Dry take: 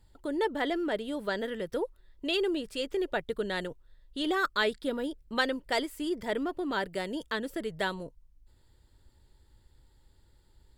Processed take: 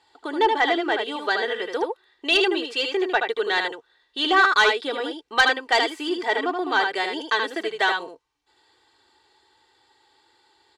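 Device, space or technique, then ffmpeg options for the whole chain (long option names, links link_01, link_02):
intercom: -af "highpass=320,lowpass=4700,tiltshelf=frequency=750:gain=-5.5,equalizer=frequency=920:width_type=o:width=0.39:gain=8,aecho=1:1:2.6:0.63,aecho=1:1:77:0.531,asoftclip=type=tanh:threshold=-15dB,volume=7dB"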